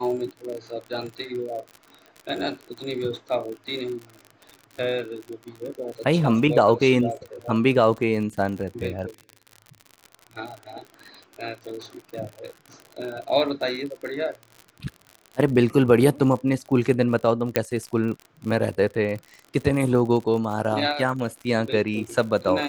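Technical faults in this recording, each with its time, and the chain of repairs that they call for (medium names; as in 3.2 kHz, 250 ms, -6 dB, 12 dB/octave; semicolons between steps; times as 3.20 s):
crackle 54 per s -31 dBFS
17.56 s: pop -5 dBFS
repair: de-click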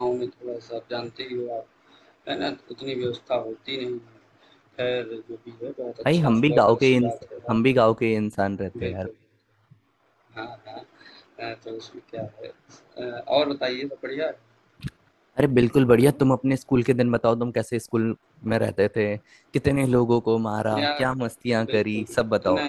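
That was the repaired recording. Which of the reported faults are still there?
17.56 s: pop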